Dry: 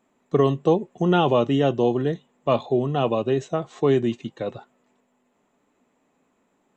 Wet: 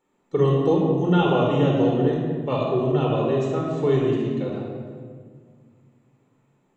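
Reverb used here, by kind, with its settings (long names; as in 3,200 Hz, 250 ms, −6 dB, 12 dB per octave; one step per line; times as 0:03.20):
rectangular room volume 2,700 cubic metres, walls mixed, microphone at 4.3 metres
level −7 dB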